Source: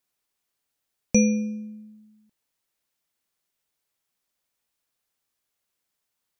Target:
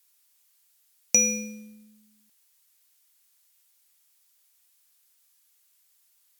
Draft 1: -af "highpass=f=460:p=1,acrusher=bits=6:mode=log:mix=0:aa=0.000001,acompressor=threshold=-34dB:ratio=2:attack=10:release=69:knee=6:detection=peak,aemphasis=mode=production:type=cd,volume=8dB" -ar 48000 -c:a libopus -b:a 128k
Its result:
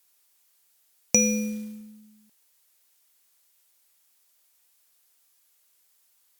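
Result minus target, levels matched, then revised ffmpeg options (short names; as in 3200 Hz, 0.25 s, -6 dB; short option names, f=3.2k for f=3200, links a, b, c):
500 Hz band +6.5 dB
-af "highpass=f=1.5k:p=1,acrusher=bits=6:mode=log:mix=0:aa=0.000001,acompressor=threshold=-34dB:ratio=2:attack=10:release=69:knee=6:detection=peak,aemphasis=mode=production:type=cd,volume=8dB" -ar 48000 -c:a libopus -b:a 128k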